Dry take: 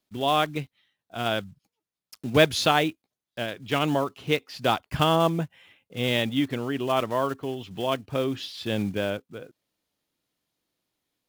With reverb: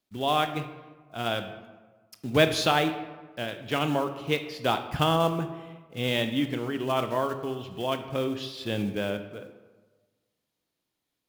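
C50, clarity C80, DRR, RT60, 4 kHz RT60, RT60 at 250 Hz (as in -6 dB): 10.0 dB, 12.0 dB, 8.0 dB, 1.3 s, 0.75 s, 1.4 s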